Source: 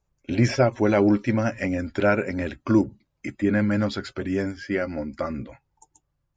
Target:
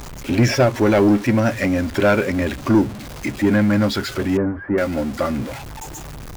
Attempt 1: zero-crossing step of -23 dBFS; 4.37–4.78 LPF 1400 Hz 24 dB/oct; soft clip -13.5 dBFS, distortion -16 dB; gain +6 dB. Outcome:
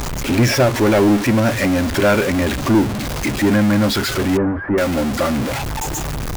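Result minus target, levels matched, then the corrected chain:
zero-crossing step: distortion +9 dB
zero-crossing step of -33.5 dBFS; 4.37–4.78 LPF 1400 Hz 24 dB/oct; soft clip -13.5 dBFS, distortion -16 dB; gain +6 dB

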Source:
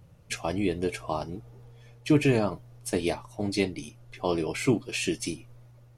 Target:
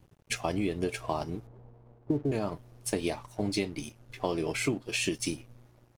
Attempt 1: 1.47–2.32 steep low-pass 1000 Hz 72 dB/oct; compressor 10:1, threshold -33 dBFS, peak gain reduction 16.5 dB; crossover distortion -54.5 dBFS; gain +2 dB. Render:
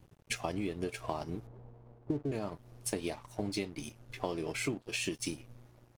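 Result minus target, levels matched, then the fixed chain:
compressor: peak gain reduction +5.5 dB
1.47–2.32 steep low-pass 1000 Hz 72 dB/oct; compressor 10:1, threshold -27 dBFS, peak gain reduction 11.5 dB; crossover distortion -54.5 dBFS; gain +2 dB

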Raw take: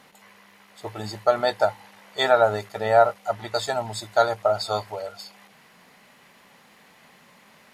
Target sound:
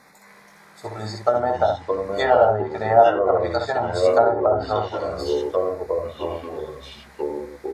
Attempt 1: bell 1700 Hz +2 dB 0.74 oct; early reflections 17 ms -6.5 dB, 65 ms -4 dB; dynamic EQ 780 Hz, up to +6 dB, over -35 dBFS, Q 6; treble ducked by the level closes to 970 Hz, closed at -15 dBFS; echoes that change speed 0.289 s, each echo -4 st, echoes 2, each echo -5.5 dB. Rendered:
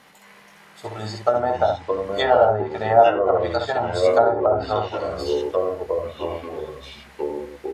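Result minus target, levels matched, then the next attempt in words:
4000 Hz band +2.5 dB
Butterworth band-stop 3000 Hz, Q 2.4; bell 1700 Hz +2 dB 0.74 oct; early reflections 17 ms -6.5 dB, 65 ms -4 dB; dynamic EQ 780 Hz, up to +6 dB, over -35 dBFS, Q 6; treble ducked by the level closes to 970 Hz, closed at -15 dBFS; echoes that change speed 0.289 s, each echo -4 st, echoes 2, each echo -5.5 dB

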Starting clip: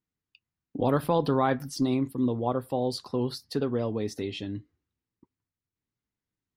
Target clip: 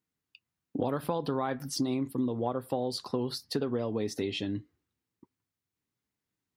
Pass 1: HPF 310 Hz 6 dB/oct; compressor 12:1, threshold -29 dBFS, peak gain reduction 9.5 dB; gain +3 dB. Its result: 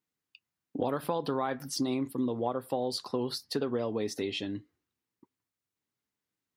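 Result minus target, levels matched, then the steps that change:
125 Hz band -3.5 dB
change: HPF 120 Hz 6 dB/oct

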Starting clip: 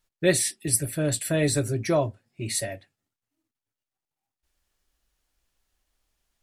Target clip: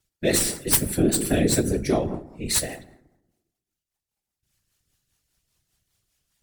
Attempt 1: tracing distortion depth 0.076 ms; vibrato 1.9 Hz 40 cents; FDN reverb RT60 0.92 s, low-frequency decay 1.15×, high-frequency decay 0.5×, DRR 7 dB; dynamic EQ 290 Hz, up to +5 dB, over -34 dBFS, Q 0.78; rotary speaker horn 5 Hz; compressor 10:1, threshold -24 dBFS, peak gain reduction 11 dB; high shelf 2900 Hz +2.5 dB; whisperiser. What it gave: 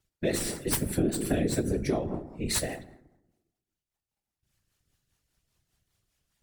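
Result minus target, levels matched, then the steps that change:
compressor: peak gain reduction +6.5 dB; 8000 Hz band -2.5 dB
change: compressor 10:1, threshold -16.5 dBFS, peak gain reduction 4.5 dB; change: high shelf 2900 Hz +9 dB

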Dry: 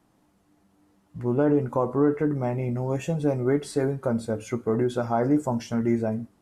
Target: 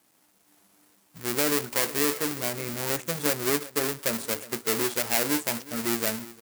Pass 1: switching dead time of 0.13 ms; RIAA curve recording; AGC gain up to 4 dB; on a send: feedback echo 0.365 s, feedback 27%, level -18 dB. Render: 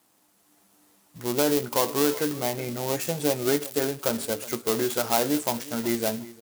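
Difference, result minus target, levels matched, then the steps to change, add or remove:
switching dead time: distortion -11 dB
change: switching dead time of 0.36 ms

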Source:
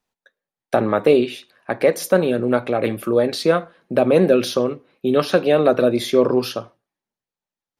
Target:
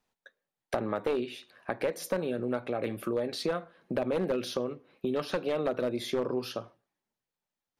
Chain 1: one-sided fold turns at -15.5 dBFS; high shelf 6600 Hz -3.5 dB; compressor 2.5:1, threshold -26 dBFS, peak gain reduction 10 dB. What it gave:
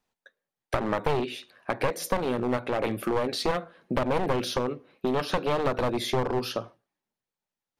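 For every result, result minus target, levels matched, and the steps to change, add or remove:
one-sided fold: distortion +14 dB; compressor: peak gain reduction -5.5 dB
change: one-sided fold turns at -8 dBFS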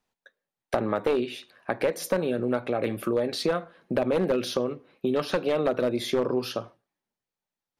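compressor: peak gain reduction -5 dB
change: compressor 2.5:1, threshold -34.5 dBFS, peak gain reduction 15.5 dB

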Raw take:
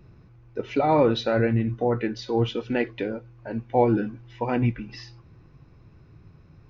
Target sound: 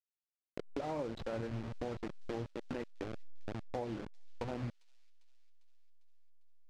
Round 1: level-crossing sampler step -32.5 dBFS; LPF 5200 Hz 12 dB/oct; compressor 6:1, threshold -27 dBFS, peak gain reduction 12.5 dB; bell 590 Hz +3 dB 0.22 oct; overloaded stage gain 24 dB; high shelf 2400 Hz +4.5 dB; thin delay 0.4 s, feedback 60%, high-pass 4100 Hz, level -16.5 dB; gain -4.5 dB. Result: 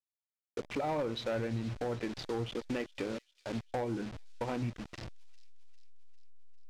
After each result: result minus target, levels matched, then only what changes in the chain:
level-crossing sampler: distortion -9 dB; 4000 Hz band +5.0 dB; compressor: peak gain reduction -4.5 dB
change: level-crossing sampler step -22 dBFS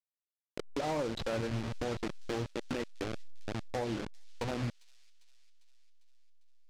4000 Hz band +6.0 dB; compressor: peak gain reduction -5 dB
change: high shelf 2400 Hz -4.5 dB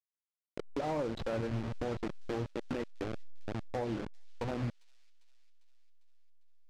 compressor: peak gain reduction -5 dB
change: compressor 6:1, threshold -33 dBFS, peak gain reduction 17 dB

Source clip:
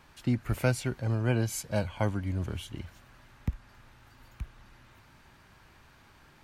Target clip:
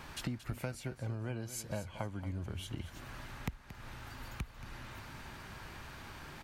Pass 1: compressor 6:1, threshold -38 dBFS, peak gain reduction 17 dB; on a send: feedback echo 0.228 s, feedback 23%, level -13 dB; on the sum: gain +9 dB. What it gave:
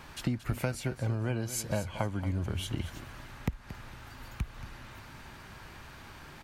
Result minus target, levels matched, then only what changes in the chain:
compressor: peak gain reduction -7.5 dB
change: compressor 6:1, threshold -47 dBFS, peak gain reduction 24.5 dB

